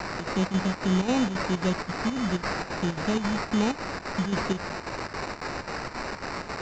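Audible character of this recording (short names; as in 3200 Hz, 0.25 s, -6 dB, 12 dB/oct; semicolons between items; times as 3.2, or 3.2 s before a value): a quantiser's noise floor 6-bit, dither triangular; chopped level 3.7 Hz, depth 60%, duty 75%; aliases and images of a low sample rate 3300 Hz, jitter 0%; µ-law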